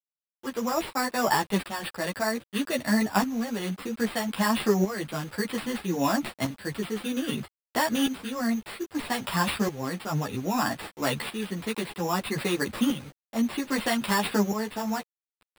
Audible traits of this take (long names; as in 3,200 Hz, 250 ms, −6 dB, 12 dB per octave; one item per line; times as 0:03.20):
aliases and images of a low sample rate 6,300 Hz, jitter 0%
tremolo saw up 0.62 Hz, depth 70%
a quantiser's noise floor 8 bits, dither none
a shimmering, thickened sound